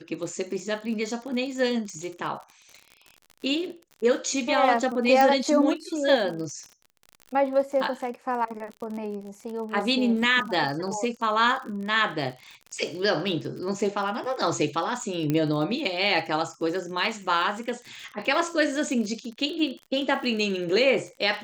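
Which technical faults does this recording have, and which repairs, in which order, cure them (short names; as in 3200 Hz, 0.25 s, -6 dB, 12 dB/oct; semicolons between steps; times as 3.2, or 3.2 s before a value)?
crackle 45/s -34 dBFS
5.21 pop
15.3 pop -13 dBFS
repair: de-click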